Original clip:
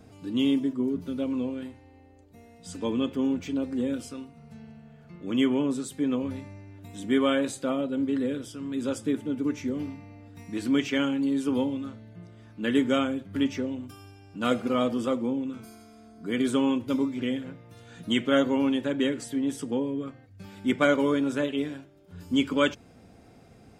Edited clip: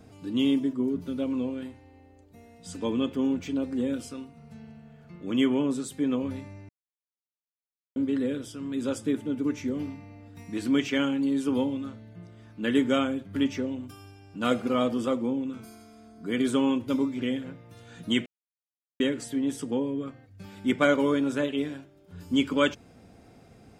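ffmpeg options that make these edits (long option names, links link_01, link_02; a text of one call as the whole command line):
ffmpeg -i in.wav -filter_complex "[0:a]asplit=5[link_01][link_02][link_03][link_04][link_05];[link_01]atrim=end=6.69,asetpts=PTS-STARTPTS,afade=type=out:start_time=6.686:duration=0.004:curve=hsin[link_06];[link_02]atrim=start=6.69:end=7.96,asetpts=PTS-STARTPTS,volume=0[link_07];[link_03]atrim=start=7.96:end=18.26,asetpts=PTS-STARTPTS,afade=type=in:duration=0.004:curve=hsin,afade=type=out:start_time=10.296:duration=0.004:curve=hsin[link_08];[link_04]atrim=start=18.26:end=19,asetpts=PTS-STARTPTS,volume=0[link_09];[link_05]atrim=start=19,asetpts=PTS-STARTPTS,afade=type=in:duration=0.004:curve=hsin[link_10];[link_06][link_07][link_08][link_09][link_10]concat=n=5:v=0:a=1" out.wav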